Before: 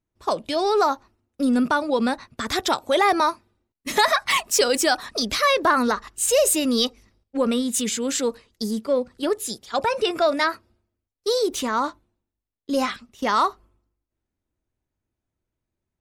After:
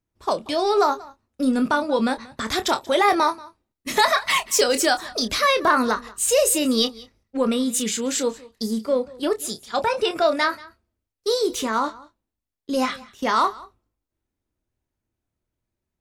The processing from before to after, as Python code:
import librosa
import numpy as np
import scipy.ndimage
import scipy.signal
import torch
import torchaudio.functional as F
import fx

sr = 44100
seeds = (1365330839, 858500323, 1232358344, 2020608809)

y = fx.wow_flutter(x, sr, seeds[0], rate_hz=2.1, depth_cents=19.0)
y = fx.doubler(y, sr, ms=27.0, db=-9.5)
y = y + 10.0 ** (-21.5 / 20.0) * np.pad(y, (int(184 * sr / 1000.0), 0))[:len(y)]